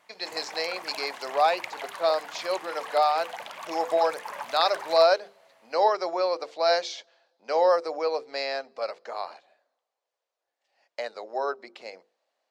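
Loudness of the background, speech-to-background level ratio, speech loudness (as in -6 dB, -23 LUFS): -38.5 LUFS, 11.5 dB, -27.0 LUFS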